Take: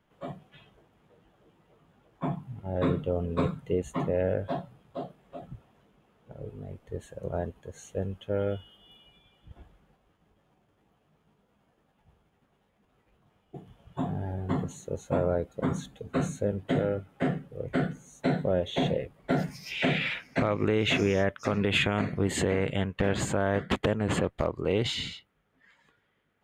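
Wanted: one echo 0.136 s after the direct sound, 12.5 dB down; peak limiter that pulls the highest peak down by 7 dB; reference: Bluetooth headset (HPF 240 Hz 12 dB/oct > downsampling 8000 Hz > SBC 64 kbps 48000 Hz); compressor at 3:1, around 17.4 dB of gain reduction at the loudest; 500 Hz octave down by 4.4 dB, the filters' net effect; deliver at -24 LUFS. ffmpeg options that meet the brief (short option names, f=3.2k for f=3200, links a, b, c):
-af "equalizer=f=500:t=o:g=-5,acompressor=threshold=-48dB:ratio=3,alimiter=level_in=13dB:limit=-24dB:level=0:latency=1,volume=-13dB,highpass=240,aecho=1:1:136:0.237,aresample=8000,aresample=44100,volume=27.5dB" -ar 48000 -c:a sbc -b:a 64k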